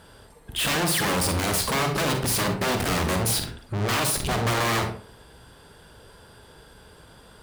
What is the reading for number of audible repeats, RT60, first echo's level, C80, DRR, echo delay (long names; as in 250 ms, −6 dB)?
no echo audible, 0.50 s, no echo audible, 12.0 dB, 5.0 dB, no echo audible